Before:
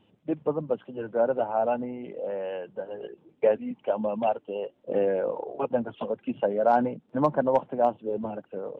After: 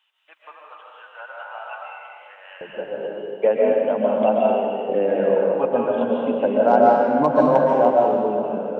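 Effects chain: HPF 1200 Hz 24 dB/oct, from 2.61 s 150 Hz; digital reverb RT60 2 s, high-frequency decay 0.9×, pre-delay 95 ms, DRR -3.5 dB; gain +3.5 dB

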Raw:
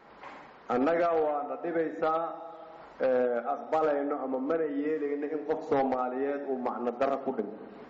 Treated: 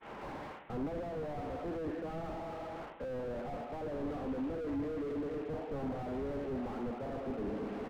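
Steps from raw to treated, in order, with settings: CVSD 16 kbps; treble ducked by the level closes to 1100 Hz, closed at -23.5 dBFS; reverse; compressor 6:1, threshold -37 dBFS, peak gain reduction 13 dB; reverse; expander -51 dBFS; on a send: echo 0.217 s -15.5 dB; on the sum: slew limiter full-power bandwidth 2.5 Hz; gain +8 dB

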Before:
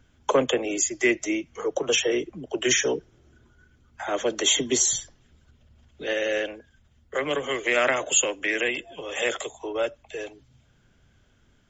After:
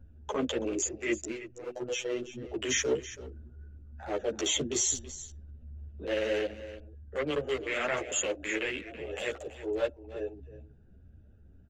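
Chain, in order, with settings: Wiener smoothing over 41 samples; bell 66 Hz +10 dB 0.73 oct; in parallel at +1 dB: compressor, threshold -38 dBFS, peak gain reduction 20.5 dB; 1.3–2.43 on the sum: robotiser 123 Hz; limiter -14.5 dBFS, peak gain reduction 9.5 dB; transient shaper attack -7 dB, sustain -1 dB; on a send: echo 0.329 s -14.5 dB; on the sum: ensemble effect

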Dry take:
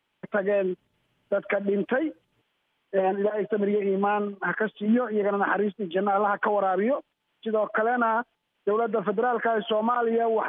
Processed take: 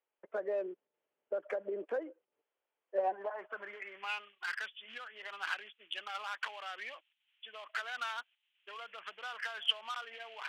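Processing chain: Wiener smoothing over 9 samples; differentiator; band-pass sweep 470 Hz -> 2900 Hz, 2.83–4.21; gain +15 dB

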